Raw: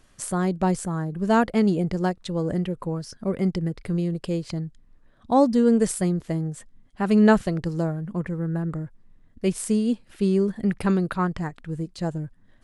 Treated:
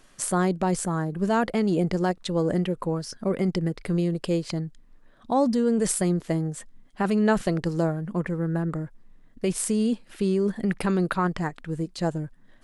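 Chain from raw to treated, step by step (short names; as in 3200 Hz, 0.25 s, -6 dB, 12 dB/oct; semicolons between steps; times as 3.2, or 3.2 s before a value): bell 65 Hz -12.5 dB 1.9 oct; in parallel at +0.5 dB: negative-ratio compressor -25 dBFS, ratio -0.5; on the sum: gain -4 dB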